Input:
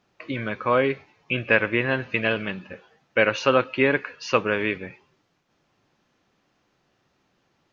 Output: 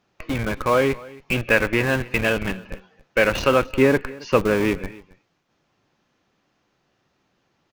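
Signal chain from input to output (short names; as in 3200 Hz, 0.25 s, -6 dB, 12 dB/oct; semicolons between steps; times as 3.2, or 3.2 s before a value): 3.65–4.79 tilt shelf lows +5 dB; in parallel at -3 dB: Schmitt trigger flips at -26.5 dBFS; on the sum: echo 0.272 s -21.5 dB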